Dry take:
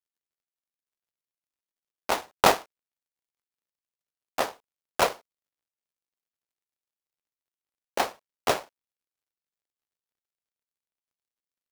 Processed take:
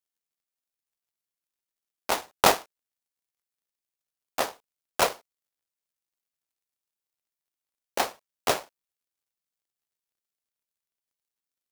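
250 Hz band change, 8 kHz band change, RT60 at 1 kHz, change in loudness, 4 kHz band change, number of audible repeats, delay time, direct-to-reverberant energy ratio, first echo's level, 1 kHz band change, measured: -1.0 dB, +3.0 dB, none, 0.0 dB, +1.5 dB, none, none, none, none, -1.0 dB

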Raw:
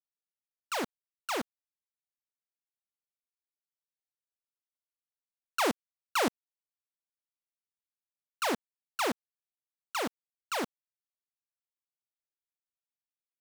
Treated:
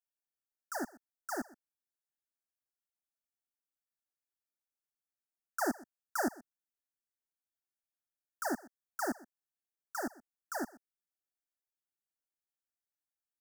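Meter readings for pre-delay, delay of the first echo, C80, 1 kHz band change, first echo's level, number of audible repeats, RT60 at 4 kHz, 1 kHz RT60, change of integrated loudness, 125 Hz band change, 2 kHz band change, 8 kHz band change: none, 0.125 s, none, -5.5 dB, -21.0 dB, 1, none, none, -5.5 dB, -8.0 dB, -5.0 dB, -4.0 dB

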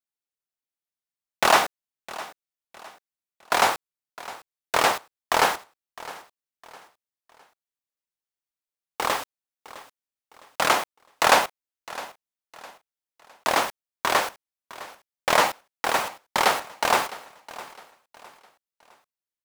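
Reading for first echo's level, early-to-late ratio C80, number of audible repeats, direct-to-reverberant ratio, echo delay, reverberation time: -18.0 dB, none, 2, none, 0.659 s, none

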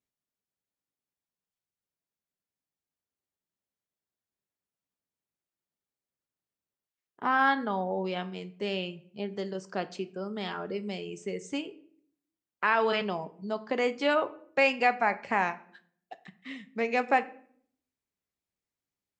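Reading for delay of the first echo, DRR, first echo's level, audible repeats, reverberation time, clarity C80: none, 10.5 dB, none, none, 0.60 s, 20.5 dB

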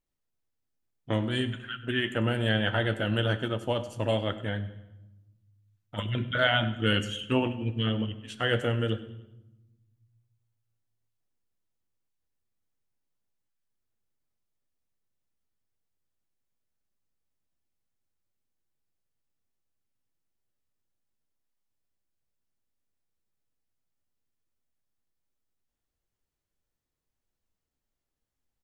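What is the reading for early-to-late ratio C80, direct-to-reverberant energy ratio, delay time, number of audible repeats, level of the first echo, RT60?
14.5 dB, 8.0 dB, 98 ms, 3, -18.5 dB, 0.95 s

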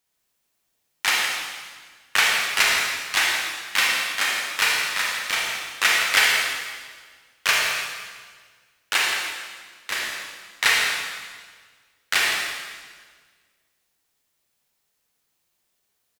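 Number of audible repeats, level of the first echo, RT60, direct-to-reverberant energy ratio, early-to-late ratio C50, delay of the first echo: 1, -9.5 dB, 1.6 s, -3.0 dB, -1.0 dB, 0.167 s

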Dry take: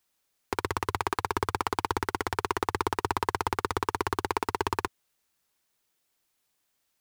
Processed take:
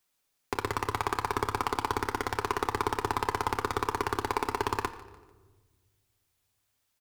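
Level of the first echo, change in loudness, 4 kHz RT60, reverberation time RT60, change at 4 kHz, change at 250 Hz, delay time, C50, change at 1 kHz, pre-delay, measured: -19.0 dB, -0.5 dB, 1.0 s, 1.4 s, -1.0 dB, -1.0 dB, 0.148 s, 13.5 dB, -0.5 dB, 7 ms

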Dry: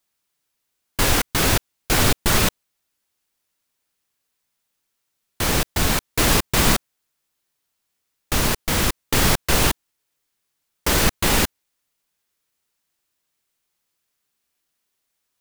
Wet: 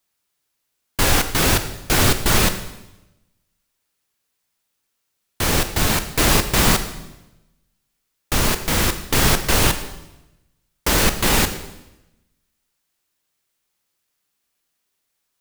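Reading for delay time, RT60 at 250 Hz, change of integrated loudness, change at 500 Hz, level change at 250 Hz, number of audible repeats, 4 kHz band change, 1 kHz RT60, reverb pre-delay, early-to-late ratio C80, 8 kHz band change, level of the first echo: none, 1.0 s, +1.5 dB, +1.5 dB, +1.5 dB, none, +1.5 dB, 0.95 s, 16 ms, 12.5 dB, +1.5 dB, none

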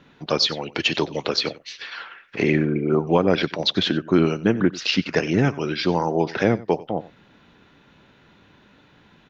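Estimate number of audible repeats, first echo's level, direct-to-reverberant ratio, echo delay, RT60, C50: 1, -19.0 dB, none, 93 ms, none, none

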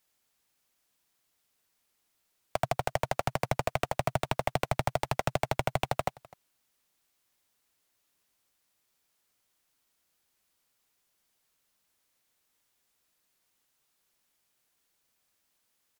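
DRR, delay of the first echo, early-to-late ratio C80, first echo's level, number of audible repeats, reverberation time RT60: none, 0.254 s, none, -23.0 dB, 1, none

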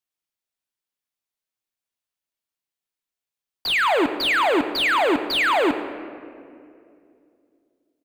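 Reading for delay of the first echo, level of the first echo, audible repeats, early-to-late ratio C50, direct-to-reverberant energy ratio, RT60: 0.107 s, -16.5 dB, 1, 9.5 dB, 8.0 dB, 2.5 s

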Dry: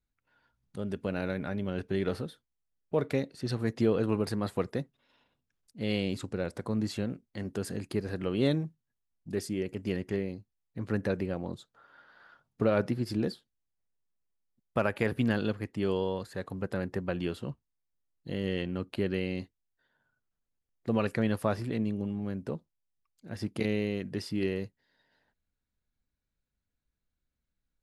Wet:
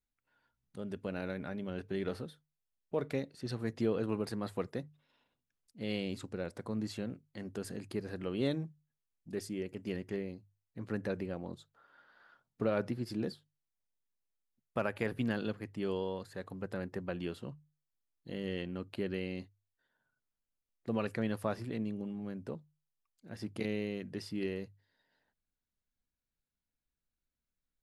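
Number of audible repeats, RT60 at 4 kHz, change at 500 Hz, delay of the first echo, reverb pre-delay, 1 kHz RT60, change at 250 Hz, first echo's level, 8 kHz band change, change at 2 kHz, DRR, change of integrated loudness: none, none, -5.5 dB, none, none, none, -6.0 dB, none, -5.5 dB, -5.5 dB, none, -6.0 dB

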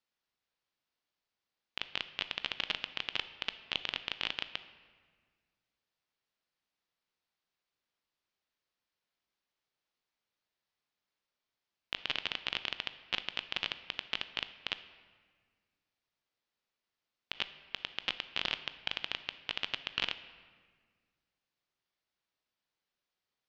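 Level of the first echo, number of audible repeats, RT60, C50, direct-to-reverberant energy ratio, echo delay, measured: none, none, 1.7 s, 13.0 dB, 11.5 dB, none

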